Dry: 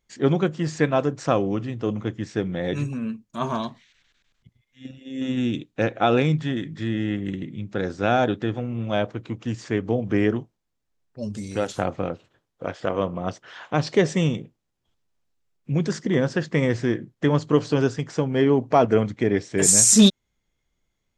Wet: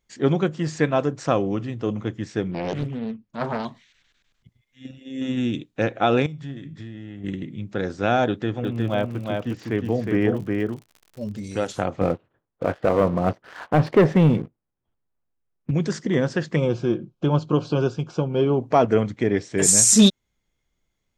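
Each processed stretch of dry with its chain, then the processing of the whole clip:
0:02.51–0:03.65: high-frequency loss of the air 180 metres + highs frequency-modulated by the lows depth 0.93 ms
0:06.26–0:07.24: low-shelf EQ 150 Hz +8 dB + downward compressor 12 to 1, threshold −25 dBFS + tuned comb filter 140 Hz, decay 0.41 s
0:08.62–0:11.43: high-frequency loss of the air 130 metres + surface crackle 46 per second −35 dBFS + single-tap delay 361 ms −3.5 dB
0:12.01–0:15.71: low-pass filter 1,700 Hz + leveller curve on the samples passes 2
0:16.56–0:18.60: Butterworth band-reject 1,900 Hz, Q 2.3 + high-frequency loss of the air 110 metres + comb filter 5.6 ms, depth 43%
whole clip: no processing

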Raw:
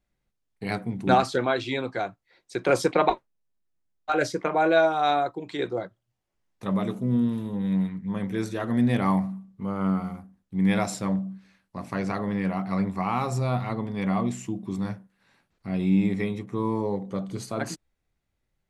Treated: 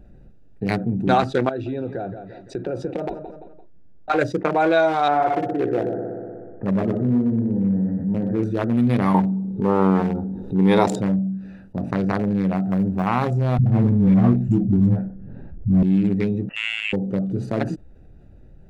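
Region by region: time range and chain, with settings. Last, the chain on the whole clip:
0:01.49–0:04.10: downward compressor 3 to 1, threshold −36 dBFS + low-pass filter 8,800 Hz + repeating echo 171 ms, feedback 28%, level −16 dB
0:05.08–0:08.43: Chebyshev low-pass filter 1,900 Hz, order 4 + echo machine with several playback heads 61 ms, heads first and second, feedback 58%, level −8 dB
0:09.14–0:11.01: hollow resonant body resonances 420/880/3,700 Hz, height 16 dB, ringing for 20 ms + upward compression, threshold −30 dBFS
0:12.56–0:13.07: spike at every zero crossing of −31 dBFS + high-shelf EQ 2,600 Hz −11.5 dB + one half of a high-frequency compander decoder only
0:13.58–0:15.83: spectral tilt −4.5 dB per octave + all-pass dispersion highs, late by 102 ms, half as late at 400 Hz
0:16.49–0:16.93: high-pass filter 450 Hz + high-shelf EQ 2,200 Hz −11 dB + voice inversion scrambler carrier 3,100 Hz
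whole clip: adaptive Wiener filter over 41 samples; envelope flattener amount 50%

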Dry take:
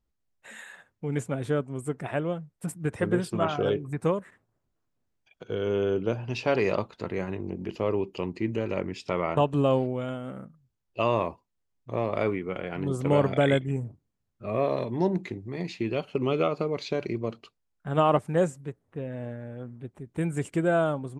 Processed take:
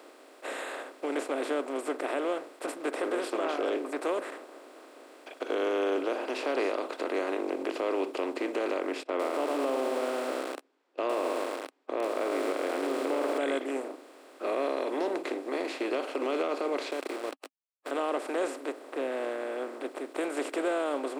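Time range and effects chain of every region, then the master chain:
0:09.03–0:13.38: noise gate −46 dBFS, range −40 dB + head-to-tape spacing loss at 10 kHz 26 dB + feedback echo at a low word length 107 ms, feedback 55%, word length 7 bits, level −7 dB
0:16.91–0:17.91: first-order pre-emphasis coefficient 0.8 + mains-hum notches 50/100 Hz + centre clipping without the shift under −48.5 dBFS
whole clip: compressor on every frequency bin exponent 0.4; Chebyshev high-pass filter 270 Hz, order 5; brickwall limiter −13.5 dBFS; level −7 dB

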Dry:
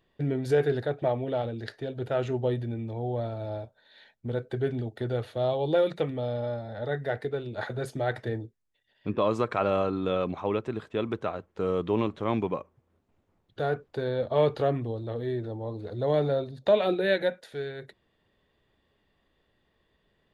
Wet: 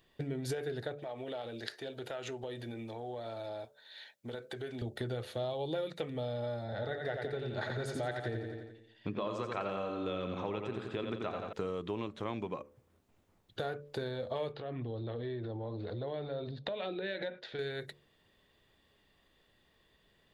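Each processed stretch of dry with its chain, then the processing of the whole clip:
0:00.97–0:04.82: high-pass filter 510 Hz 6 dB per octave + downward compressor 4 to 1, threshold −38 dBFS
0:06.64–0:11.53: high-frequency loss of the air 51 metres + repeating echo 87 ms, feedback 53%, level −5.5 dB
0:14.52–0:17.59: low-pass filter 4,100 Hz 24 dB per octave + downward compressor 5 to 1, threshold −34 dBFS
whole clip: downward compressor 6 to 1, threshold −34 dBFS; high-shelf EQ 2,800 Hz +9 dB; hum removal 72.64 Hz, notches 8

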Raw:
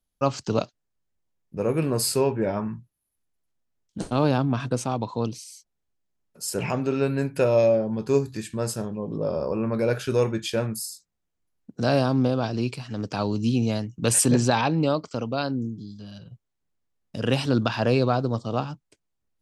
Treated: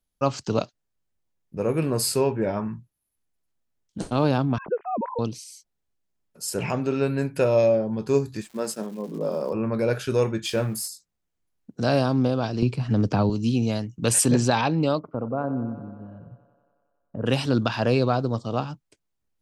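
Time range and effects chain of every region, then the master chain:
0:04.58–0:05.19: three sine waves on the formant tracks + Gaussian smoothing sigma 4.9 samples
0:08.41–0:09.52: downward expander −30 dBFS + Butterworth high-pass 160 Hz 48 dB per octave + surface crackle 390 per second −41 dBFS
0:10.45–0:10.88: mu-law and A-law mismatch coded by mu + double-tracking delay 24 ms −12 dB
0:12.62–0:13.30: spectral tilt −2.5 dB per octave + multiband upward and downward compressor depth 100%
0:14.99–0:17.26: low-pass filter 1,300 Hz 24 dB per octave + feedback echo with a high-pass in the loop 92 ms, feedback 77%, high-pass 190 Hz, level −12.5 dB
whole clip: no processing

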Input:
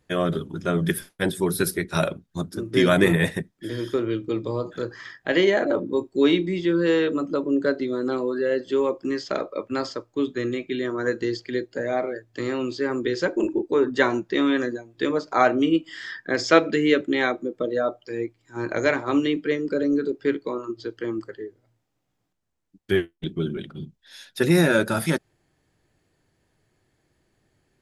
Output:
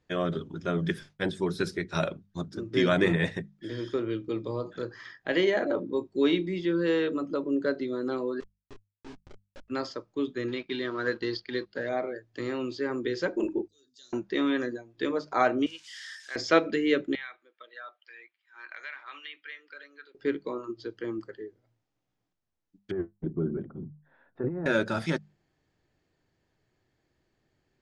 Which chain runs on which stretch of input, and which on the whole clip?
0:08.40–0:09.68: gate with flip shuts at −17 dBFS, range −31 dB + comparator with hysteresis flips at −35 dBFS + micro pitch shift up and down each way 55 cents
0:10.48–0:11.89: mu-law and A-law mismatch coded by A + low-pass with resonance 4,300 Hz, resonance Q 2.6 + parametric band 1,400 Hz +5 dB 0.66 octaves
0:13.68–0:14.13: inverse Chebyshev high-pass filter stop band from 2,400 Hz + transient designer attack −7 dB, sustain +3 dB
0:15.66–0:16.36: spike at every zero crossing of −28 dBFS + Bessel high-pass filter 2,000 Hz
0:17.15–0:20.15: flat-topped band-pass 2,300 Hz, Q 0.99 + downward compressor 3 to 1, threshold −32 dBFS
0:22.91–0:24.66: low-pass filter 1,200 Hz 24 dB per octave + compressor whose output falls as the input rises −24 dBFS
whole clip: low-pass filter 6,600 Hz 24 dB per octave; mains-hum notches 50/100/150/200 Hz; level −5.5 dB

